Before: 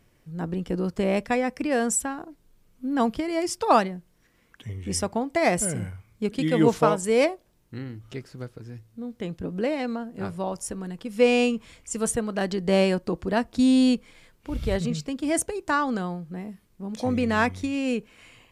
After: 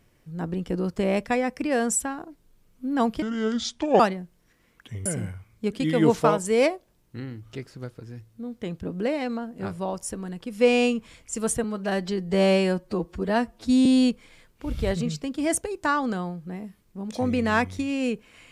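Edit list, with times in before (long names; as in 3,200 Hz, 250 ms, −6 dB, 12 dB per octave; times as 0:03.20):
0:03.22–0:03.74: play speed 67%
0:04.80–0:05.64: remove
0:12.22–0:13.70: time-stretch 1.5×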